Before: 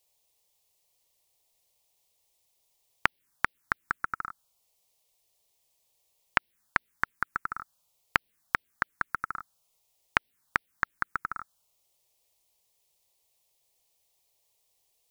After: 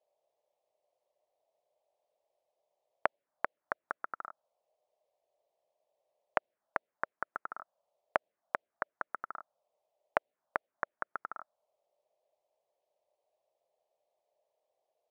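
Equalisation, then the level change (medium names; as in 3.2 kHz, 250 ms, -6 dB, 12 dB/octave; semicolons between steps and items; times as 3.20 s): band-pass filter 610 Hz, Q 5.5; +12.0 dB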